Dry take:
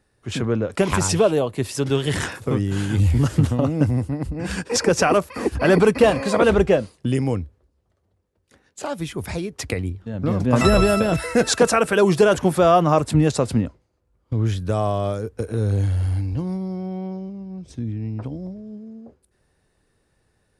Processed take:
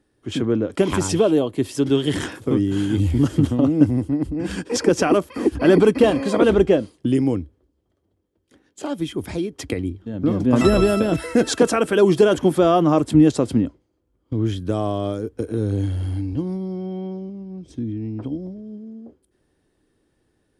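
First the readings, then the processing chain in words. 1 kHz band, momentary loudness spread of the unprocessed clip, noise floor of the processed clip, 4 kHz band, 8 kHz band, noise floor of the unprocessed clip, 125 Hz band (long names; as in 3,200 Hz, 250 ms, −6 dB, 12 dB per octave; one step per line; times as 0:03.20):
−3.0 dB, 14 LU, −69 dBFS, −1.5 dB, −4.0 dB, −68 dBFS, −2.5 dB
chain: hollow resonant body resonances 300/3,200 Hz, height 12 dB, ringing for 25 ms
level −4 dB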